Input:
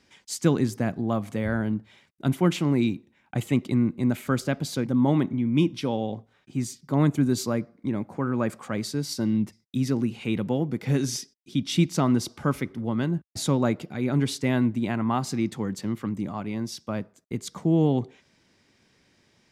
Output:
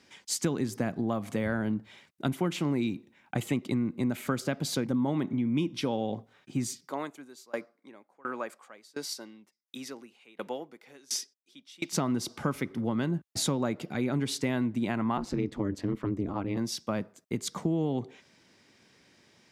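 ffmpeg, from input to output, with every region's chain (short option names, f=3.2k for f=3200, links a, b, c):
-filter_complex "[0:a]asettb=1/sr,asplit=3[a][b][c];[a]atrim=end=6.824[d];[b]atrim=start=6.82:end=11.93,asetpts=PTS-STARTPTS,afade=t=in:d=0.004:c=qsin,afade=t=out:st=5.106:d=0.004:c=qsin,highpass=520,aeval=exprs='val(0)*pow(10,-27*if(lt(mod(1.4*n/s,1),2*abs(1.4)/1000),1-mod(1.4*n/s,1)/(2*abs(1.4)/1000),(mod(1.4*n/s,1)-2*abs(1.4)/1000)/(1-2*abs(1.4)/1000))/20)':c=same[e];[c]atrim=start=11.926[f];[d][e]acrossfade=d=0.004:c1=hsin:c2=qsin[g];[g][f]acrossfade=d=0.004:c1=qsin:c2=hsin,asettb=1/sr,asplit=3[h][i][j];[h]atrim=end=15.174[k];[i]atrim=start=15.17:end=16.57,asetpts=PTS-STARTPTS,afade=t=in:d=0.004:c=qsin,afade=t=out:st=1.396:d=0.004:c=qsin,lowpass=f=2.6k:p=1,lowshelf=f=150:g=10,aeval=exprs='val(0)*sin(2*PI*100*n/s)':c=same[l];[j]atrim=start=16.566[m];[k][l]acrossfade=d=0.004:c1=hsin:c2=qsin[n];[n][m]acrossfade=d=0.004:c1=qsin:c2=hsin,highpass=f=150:p=1,acompressor=threshold=-28dB:ratio=5,volume=2.5dB"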